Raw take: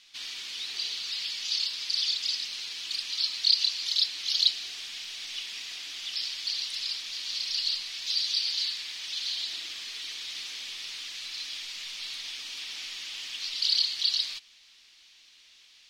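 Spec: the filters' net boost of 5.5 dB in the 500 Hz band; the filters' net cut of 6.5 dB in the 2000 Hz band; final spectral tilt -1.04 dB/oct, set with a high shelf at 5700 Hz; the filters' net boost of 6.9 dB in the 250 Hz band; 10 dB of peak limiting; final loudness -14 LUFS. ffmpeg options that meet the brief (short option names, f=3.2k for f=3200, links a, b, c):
-af "equalizer=f=250:t=o:g=7,equalizer=f=500:t=o:g=5.5,equalizer=f=2k:t=o:g=-7.5,highshelf=f=5.7k:g=-8.5,volume=21.5dB,alimiter=limit=-2.5dB:level=0:latency=1"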